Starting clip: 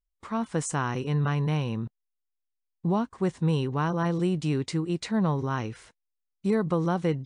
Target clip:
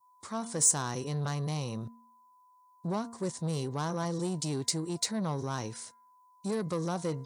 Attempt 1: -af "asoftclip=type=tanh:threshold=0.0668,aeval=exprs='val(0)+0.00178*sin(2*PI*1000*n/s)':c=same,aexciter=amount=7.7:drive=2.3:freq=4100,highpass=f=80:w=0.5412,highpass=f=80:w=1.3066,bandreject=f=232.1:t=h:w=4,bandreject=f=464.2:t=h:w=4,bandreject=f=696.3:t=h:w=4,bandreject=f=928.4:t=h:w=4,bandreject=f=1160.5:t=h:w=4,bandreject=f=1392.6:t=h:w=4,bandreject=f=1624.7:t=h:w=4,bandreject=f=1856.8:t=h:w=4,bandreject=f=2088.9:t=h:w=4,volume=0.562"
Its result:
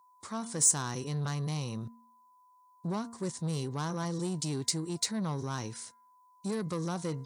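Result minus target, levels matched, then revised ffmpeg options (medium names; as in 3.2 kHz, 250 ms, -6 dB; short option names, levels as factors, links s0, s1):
500 Hz band -2.5 dB
-af "asoftclip=type=tanh:threshold=0.0668,aeval=exprs='val(0)+0.00178*sin(2*PI*1000*n/s)':c=same,aexciter=amount=7.7:drive=2.3:freq=4100,highpass=f=80:w=0.5412,highpass=f=80:w=1.3066,adynamicequalizer=threshold=0.00501:dfrequency=610:dqfactor=1.3:tfrequency=610:tqfactor=1.3:attack=5:release=100:ratio=0.417:range=2.5:mode=boostabove:tftype=bell,bandreject=f=232.1:t=h:w=4,bandreject=f=464.2:t=h:w=4,bandreject=f=696.3:t=h:w=4,bandreject=f=928.4:t=h:w=4,bandreject=f=1160.5:t=h:w=4,bandreject=f=1392.6:t=h:w=4,bandreject=f=1624.7:t=h:w=4,bandreject=f=1856.8:t=h:w=4,bandreject=f=2088.9:t=h:w=4,volume=0.562"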